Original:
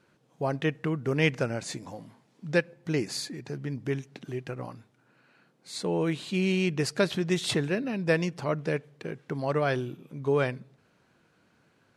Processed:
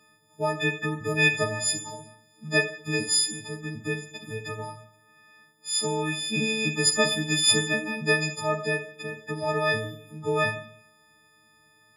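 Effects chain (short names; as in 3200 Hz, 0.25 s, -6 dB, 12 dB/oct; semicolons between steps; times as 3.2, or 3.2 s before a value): frequency quantiser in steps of 6 st; Schroeder reverb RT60 0.64 s, combs from 27 ms, DRR 7 dB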